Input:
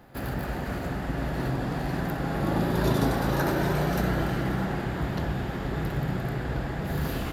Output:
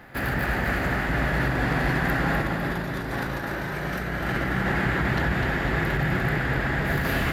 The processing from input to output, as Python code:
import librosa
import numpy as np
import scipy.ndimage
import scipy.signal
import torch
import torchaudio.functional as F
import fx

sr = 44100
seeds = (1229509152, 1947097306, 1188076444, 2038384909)

y = fx.peak_eq(x, sr, hz=1900.0, db=11.0, octaves=1.1)
y = fx.over_compress(y, sr, threshold_db=-27.0, ratio=-0.5)
y = fx.echo_feedback(y, sr, ms=251, feedback_pct=55, wet_db=-7)
y = y * librosa.db_to_amplitude(1.5)